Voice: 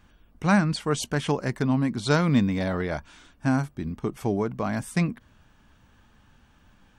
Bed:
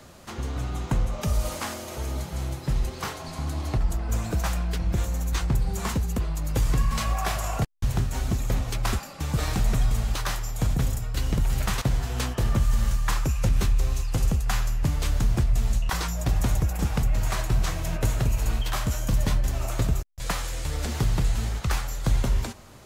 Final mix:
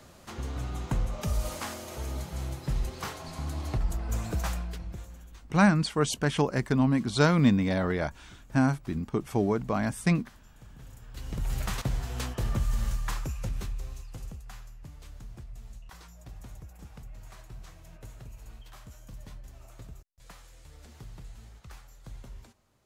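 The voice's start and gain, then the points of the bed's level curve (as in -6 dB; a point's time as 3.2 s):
5.10 s, -0.5 dB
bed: 4.5 s -4.5 dB
5.46 s -27 dB
10.72 s -27 dB
11.5 s -6 dB
12.94 s -6 dB
14.75 s -22 dB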